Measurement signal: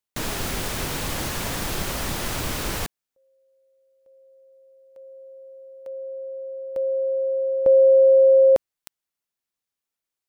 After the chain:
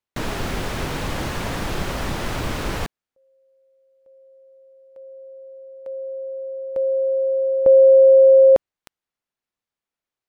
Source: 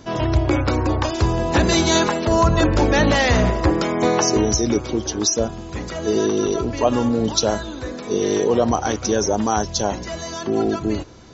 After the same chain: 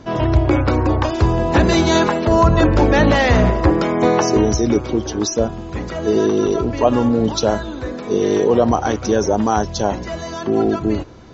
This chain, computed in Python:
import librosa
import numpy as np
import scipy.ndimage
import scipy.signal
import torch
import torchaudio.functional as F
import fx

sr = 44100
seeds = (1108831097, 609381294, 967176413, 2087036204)

y = fx.lowpass(x, sr, hz=2400.0, slope=6)
y = y * 10.0 ** (3.5 / 20.0)